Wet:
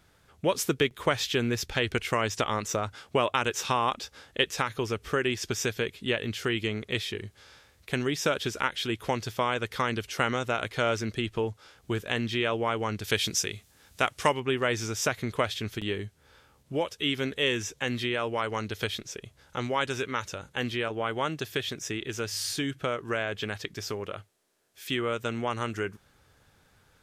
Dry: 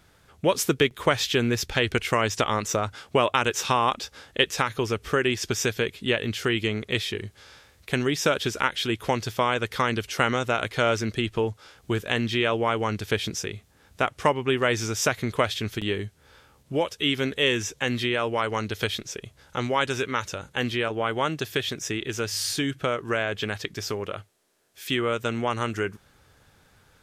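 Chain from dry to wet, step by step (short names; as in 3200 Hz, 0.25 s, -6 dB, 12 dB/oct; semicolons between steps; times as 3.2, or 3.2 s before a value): 13.04–14.4 high shelf 2300 Hz +10 dB; gain -4 dB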